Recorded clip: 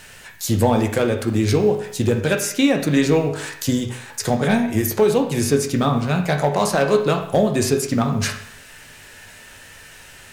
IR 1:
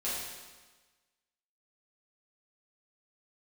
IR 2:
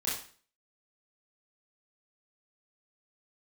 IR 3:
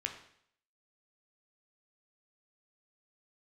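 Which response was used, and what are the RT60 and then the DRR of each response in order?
3; 1.3, 0.45, 0.65 seconds; −10.0, −8.0, 3.0 decibels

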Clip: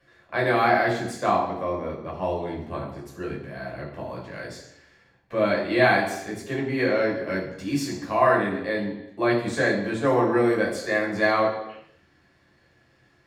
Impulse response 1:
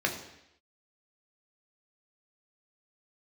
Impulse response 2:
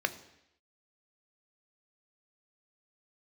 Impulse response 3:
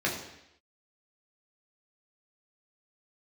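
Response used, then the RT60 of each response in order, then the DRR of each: 3; 0.80, 0.80, 0.80 seconds; 1.5, 10.0, −3.5 decibels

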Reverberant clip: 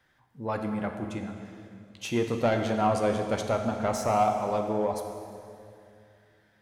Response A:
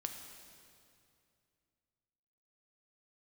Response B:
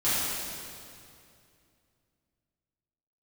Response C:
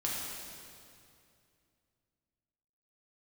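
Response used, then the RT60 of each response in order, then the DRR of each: A; 2.5, 2.5, 2.5 seconds; 4.0, −14.0, −5.0 decibels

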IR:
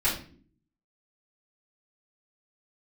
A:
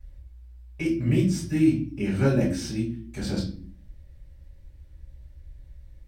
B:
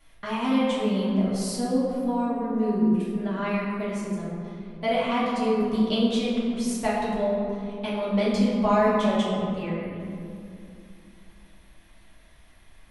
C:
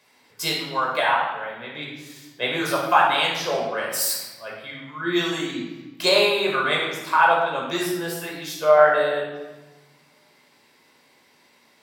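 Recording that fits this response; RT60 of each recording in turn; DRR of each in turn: A; non-exponential decay, 2.6 s, 1.1 s; −8.5, −9.0, −3.0 decibels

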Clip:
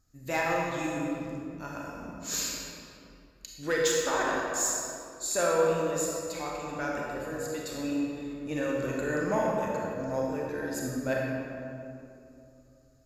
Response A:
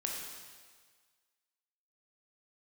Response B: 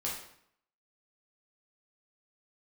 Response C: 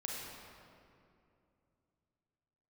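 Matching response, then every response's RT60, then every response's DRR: C; 1.6, 0.65, 2.6 seconds; −1.5, −5.5, −3.0 decibels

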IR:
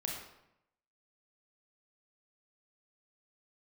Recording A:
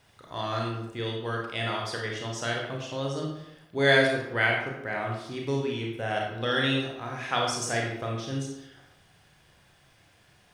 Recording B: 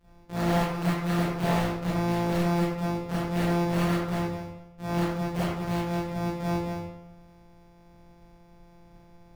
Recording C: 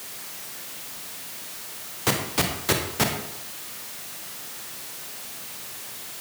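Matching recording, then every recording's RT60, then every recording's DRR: A; 0.80, 0.80, 0.80 seconds; −1.0, −10.0, 3.5 decibels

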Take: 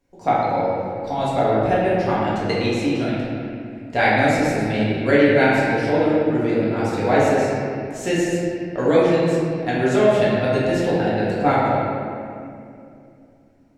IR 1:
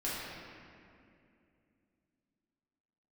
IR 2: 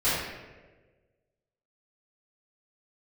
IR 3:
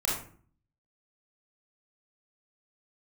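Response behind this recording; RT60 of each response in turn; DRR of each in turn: 1; 2.5, 1.4, 0.50 seconds; −9.0, −15.5, −4.5 decibels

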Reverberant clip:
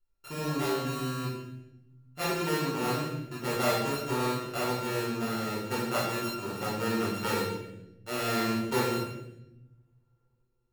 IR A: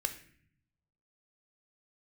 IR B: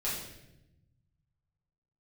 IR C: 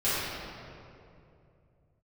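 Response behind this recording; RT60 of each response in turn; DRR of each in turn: B; 0.55, 0.90, 2.6 seconds; 7.0, −9.0, −14.0 decibels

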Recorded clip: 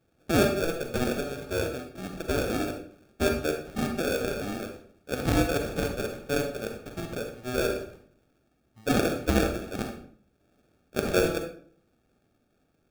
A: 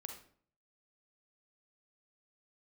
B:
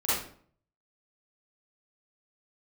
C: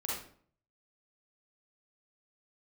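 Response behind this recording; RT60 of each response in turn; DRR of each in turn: A; 0.55, 0.50, 0.50 seconds; 3.5, −12.0, −5.5 decibels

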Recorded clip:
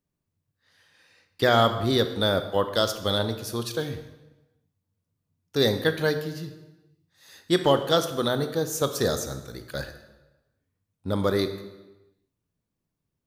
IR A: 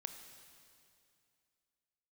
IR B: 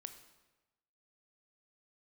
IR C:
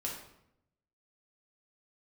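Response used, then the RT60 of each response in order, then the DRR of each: B; 2.5, 1.1, 0.80 seconds; 6.5, 8.0, −3.5 decibels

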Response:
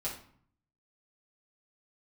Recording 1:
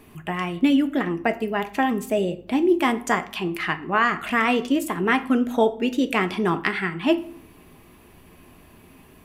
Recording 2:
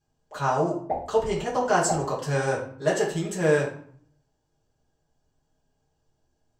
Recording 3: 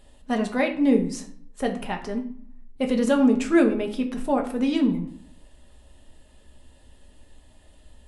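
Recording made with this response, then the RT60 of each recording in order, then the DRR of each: 2; 0.55, 0.55, 0.55 seconds; 8.5, −6.5, 2.5 decibels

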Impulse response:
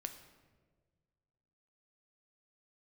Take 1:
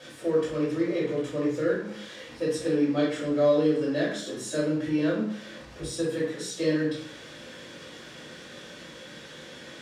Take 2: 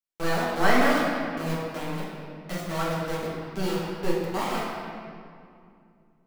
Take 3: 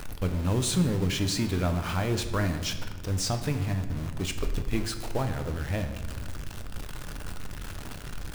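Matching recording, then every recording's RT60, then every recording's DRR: 3; 0.60, 2.4, 1.5 seconds; −7.5, −8.0, 6.5 decibels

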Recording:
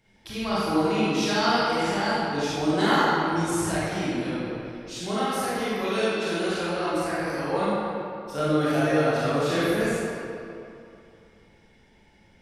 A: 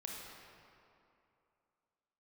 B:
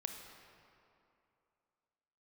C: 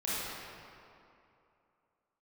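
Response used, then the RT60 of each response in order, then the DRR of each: C; 2.7, 2.7, 2.7 seconds; −2.0, 4.0, −10.0 decibels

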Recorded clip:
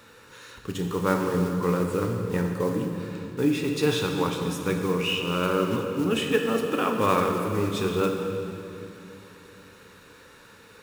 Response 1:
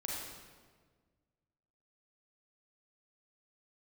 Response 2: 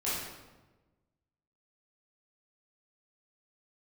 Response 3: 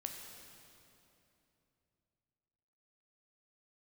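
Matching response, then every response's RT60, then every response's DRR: 3; 1.6, 1.2, 3.0 seconds; −3.5, −10.0, 2.5 decibels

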